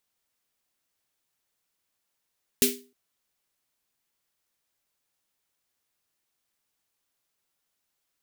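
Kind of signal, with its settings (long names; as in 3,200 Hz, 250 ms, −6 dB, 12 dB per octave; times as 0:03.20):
synth snare length 0.31 s, tones 250 Hz, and 400 Hz, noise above 2,100 Hz, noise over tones 4.5 dB, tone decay 0.37 s, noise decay 0.28 s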